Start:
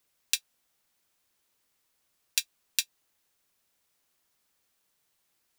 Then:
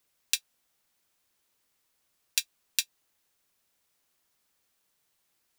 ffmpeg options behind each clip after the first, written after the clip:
ffmpeg -i in.wav -af anull out.wav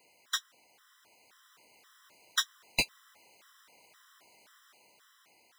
ffmpeg -i in.wav -filter_complex "[0:a]asplit=2[link_01][link_02];[link_02]highpass=frequency=720:poles=1,volume=37dB,asoftclip=type=tanh:threshold=-1dB[link_03];[link_01][link_03]amix=inputs=2:normalize=0,lowpass=frequency=1700:poles=1,volume=-6dB,dynaudnorm=framelen=390:gausssize=7:maxgain=4dB,afftfilt=real='re*gt(sin(2*PI*1.9*pts/sr)*(1-2*mod(floor(b*sr/1024/1000),2)),0)':imag='im*gt(sin(2*PI*1.9*pts/sr)*(1-2*mod(floor(b*sr/1024/1000),2)),0)':win_size=1024:overlap=0.75,volume=-8dB" out.wav

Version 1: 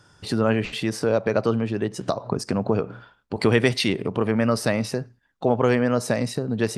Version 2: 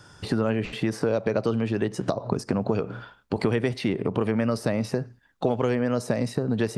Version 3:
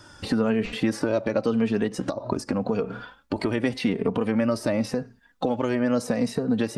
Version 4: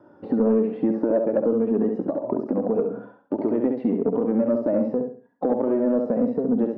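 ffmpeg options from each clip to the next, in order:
ffmpeg -i in.wav -filter_complex "[0:a]acrossover=split=740|2000[link_01][link_02][link_03];[link_01]acompressor=threshold=-27dB:ratio=4[link_04];[link_02]acompressor=threshold=-43dB:ratio=4[link_05];[link_03]acompressor=threshold=-47dB:ratio=4[link_06];[link_04][link_05][link_06]amix=inputs=3:normalize=0,volume=5dB" out.wav
ffmpeg -i in.wav -af "flanger=delay=3.1:depth=1.4:regen=17:speed=0.87:shape=triangular,alimiter=limit=-18.5dB:level=0:latency=1:release=247,volume=6dB" out.wav
ffmpeg -i in.wav -filter_complex "[0:a]asuperpass=centerf=400:order=4:qfactor=0.76,asplit=2[link_01][link_02];[link_02]aecho=0:1:68|136|204|272:0.562|0.169|0.0506|0.0152[link_03];[link_01][link_03]amix=inputs=2:normalize=0,asoftclip=type=tanh:threshold=-13dB,volume=3.5dB" out.wav

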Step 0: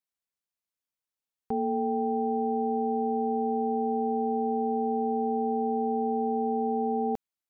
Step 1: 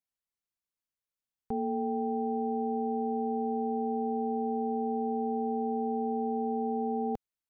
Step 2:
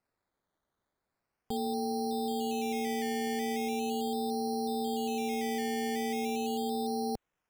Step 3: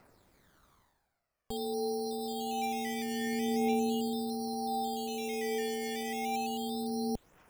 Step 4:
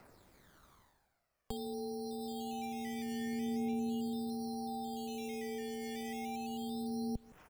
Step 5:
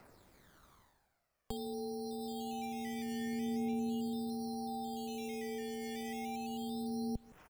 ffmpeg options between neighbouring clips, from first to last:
ffmpeg -i in.wav -af "lowshelf=frequency=130:gain=9,volume=-4.5dB" out.wav
ffmpeg -i in.wav -af "alimiter=level_in=9.5dB:limit=-24dB:level=0:latency=1:release=11,volume=-9.5dB,acrusher=samples=13:mix=1:aa=0.000001:lfo=1:lforange=7.8:lforate=0.39,volume=7.5dB" out.wav
ffmpeg -i in.wav -af "areverse,acompressor=mode=upward:threshold=-48dB:ratio=2.5,areverse,aphaser=in_gain=1:out_gain=1:delay=2.2:decay=0.55:speed=0.27:type=triangular,volume=-2dB" out.wav
ffmpeg -i in.wav -filter_complex "[0:a]asplit=2[link_01][link_02];[link_02]adelay=163.3,volume=-25dB,highshelf=frequency=4000:gain=-3.67[link_03];[link_01][link_03]amix=inputs=2:normalize=0,acrossover=split=200[link_04][link_05];[link_05]acompressor=threshold=-45dB:ratio=4[link_06];[link_04][link_06]amix=inputs=2:normalize=0,volume=2dB" out.wav
ffmpeg -i in.wav -filter_complex "[0:a]asplit=2[link_01][link_02];[link_02]adelay=110,highpass=300,lowpass=3400,asoftclip=type=hard:threshold=-36dB,volume=-27dB[link_03];[link_01][link_03]amix=inputs=2:normalize=0" out.wav

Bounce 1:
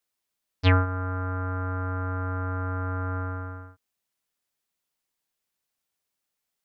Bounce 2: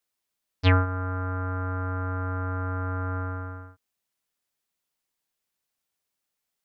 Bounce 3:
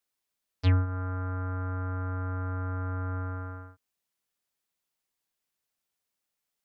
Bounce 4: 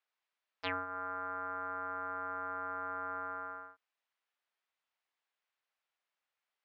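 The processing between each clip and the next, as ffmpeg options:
ffmpeg -i in.wav -af anull out.wav
ffmpeg -i in.wav -filter_complex "[0:a]acrossover=split=280[link_01][link_02];[link_02]acompressor=threshold=-35dB:ratio=3[link_03];[link_01][link_03]amix=inputs=2:normalize=0,volume=-2dB" out.wav
ffmpeg -i in.wav -af "highpass=700,lowpass=2800,volume=3dB" out.wav

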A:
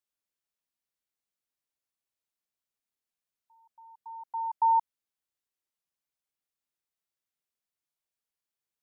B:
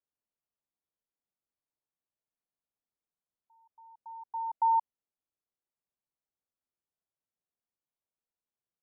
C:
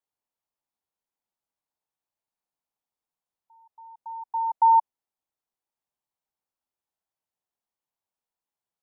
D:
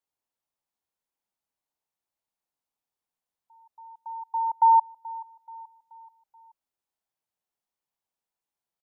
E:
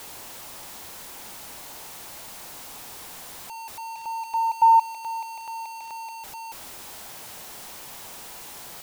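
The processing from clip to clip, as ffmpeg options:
ffmpeg -i in.wav -af "lowpass=1000" out.wav
ffmpeg -i in.wav -af "equalizer=frequency=870:width_type=o:width=0.77:gain=8.5" out.wav
ffmpeg -i in.wav -af "aecho=1:1:430|860|1290|1720:0.106|0.0519|0.0254|0.0125" out.wav
ffmpeg -i in.wav -af "aeval=exprs='val(0)+0.5*0.02*sgn(val(0))':channel_layout=same,volume=1.5dB" out.wav

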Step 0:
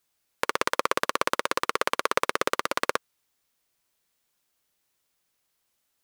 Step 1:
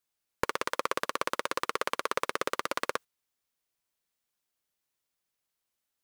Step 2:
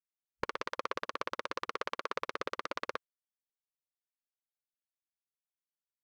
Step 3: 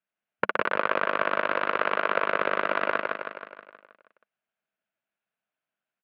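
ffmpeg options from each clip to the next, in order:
ffmpeg -i in.wav -af "agate=range=-11dB:threshold=-36dB:ratio=16:detection=peak,alimiter=limit=-11.5dB:level=0:latency=1:release=21,volume=2dB" out.wav
ffmpeg -i in.wav -af "afwtdn=0.00631,volume=-6dB" out.wav
ffmpeg -i in.wav -filter_complex "[0:a]highpass=frequency=110:width=0.5412,highpass=frequency=110:width=1.3066,equalizer=frequency=200:width_type=q:width=4:gain=7,equalizer=frequency=650:width_type=q:width=4:gain=10,equalizer=frequency=1500:width_type=q:width=4:gain=8,equalizer=frequency=2600:width_type=q:width=4:gain=4,lowpass=frequency=3000:width=0.5412,lowpass=frequency=3000:width=1.3066,asplit=2[link_01][link_02];[link_02]aecho=0:1:159|318|477|636|795|954|1113|1272:0.708|0.389|0.214|0.118|0.0648|0.0356|0.0196|0.0108[link_03];[link_01][link_03]amix=inputs=2:normalize=0,volume=7dB" out.wav

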